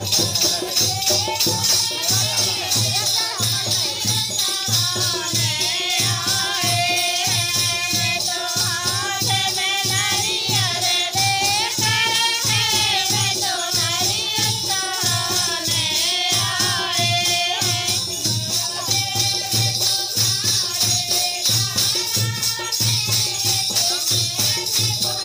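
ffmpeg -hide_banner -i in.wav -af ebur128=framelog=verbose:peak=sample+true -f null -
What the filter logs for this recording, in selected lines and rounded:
Integrated loudness:
  I:         -17.4 LUFS
  Threshold: -27.4 LUFS
Loudness range:
  LRA:         1.3 LU
  Threshold: -37.5 LUFS
  LRA low:   -18.0 LUFS
  LRA high:  -16.8 LUFS
Sample peak:
  Peak:       -8.7 dBFS
True peak:
  Peak:       -7.6 dBFS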